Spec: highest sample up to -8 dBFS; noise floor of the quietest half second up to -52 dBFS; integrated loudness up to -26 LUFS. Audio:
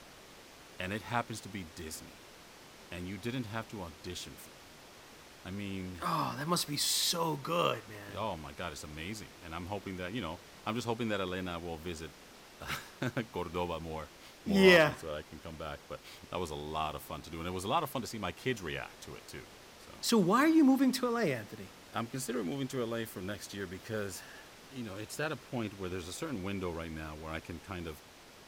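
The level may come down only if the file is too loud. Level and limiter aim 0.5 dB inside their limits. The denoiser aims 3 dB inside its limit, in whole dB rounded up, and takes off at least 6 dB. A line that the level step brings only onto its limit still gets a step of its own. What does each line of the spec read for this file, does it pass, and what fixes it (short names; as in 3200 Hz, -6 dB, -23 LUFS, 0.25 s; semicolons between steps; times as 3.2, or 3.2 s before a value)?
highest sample -9.5 dBFS: OK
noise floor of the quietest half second -55 dBFS: OK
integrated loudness -34.5 LUFS: OK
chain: none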